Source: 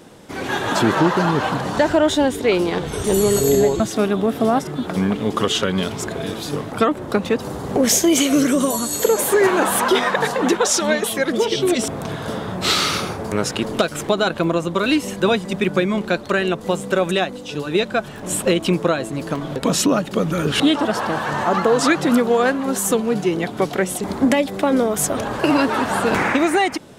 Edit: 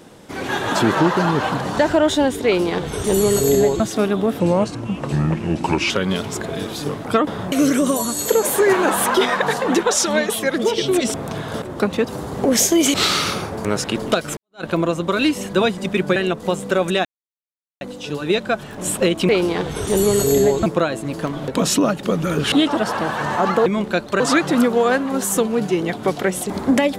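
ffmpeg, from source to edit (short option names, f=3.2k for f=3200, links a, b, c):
-filter_complex "[0:a]asplit=14[a][b][c][d][e][f][g][h][i][j][k][l][m][n];[a]atrim=end=4.404[o];[b]atrim=start=4.4:end=5.57,asetpts=PTS-STARTPTS,asetrate=34398,aresample=44100[p];[c]atrim=start=5.566:end=6.942[q];[d]atrim=start=12.358:end=12.612[r];[e]atrim=start=8.258:end=12.362[s];[f]atrim=start=6.938:end=8.262[t];[g]atrim=start=12.608:end=14.04,asetpts=PTS-STARTPTS,afade=t=out:st=1.428:d=0.004:c=hsin[u];[h]atrim=start=14.04:end=15.832,asetpts=PTS-STARTPTS,afade=t=in:d=0.27:c=exp[v];[i]atrim=start=16.368:end=17.26,asetpts=PTS-STARTPTS,afade=t=out:st=0.888:d=0.004:c=hsin,apad=pad_dur=0.76[w];[j]atrim=start=17.26:end=18.742,asetpts=PTS-STARTPTS,afade=t=in:d=0.004:c=hsin[x];[k]atrim=start=2.458:end=3.832[y];[l]atrim=start=18.738:end=21.742[z];[m]atrim=start=15.828:end=16.372[aa];[n]atrim=start=21.738[ab];[o][p]acrossfade=d=0.004:c1=hsin:c2=hsin[ac];[ac][q]acrossfade=d=0.004:c1=hsin:c2=hsin[ad];[ad][r]acrossfade=d=0.004:c1=hsin:c2=hsin[ae];[ae][s]acrossfade=d=0.004:c1=hsin:c2=hsin[af];[af][t]acrossfade=d=0.004:c1=hsin:c2=hsin[ag];[u][v]concat=n=2:v=0:a=1[ah];[ag][ah]acrossfade=d=0.004:c1=hsin:c2=hsin[ai];[w][x]concat=n=2:v=0:a=1[aj];[ai][aj]acrossfade=d=0.004:c1=hsin:c2=hsin[ak];[ak][y]acrossfade=d=0.004:c1=hsin:c2=hsin[al];[al][z]acrossfade=d=0.004:c1=hsin:c2=hsin[am];[am][aa]acrossfade=d=0.004:c1=hsin:c2=hsin[an];[an][ab]acrossfade=d=0.004:c1=hsin:c2=hsin"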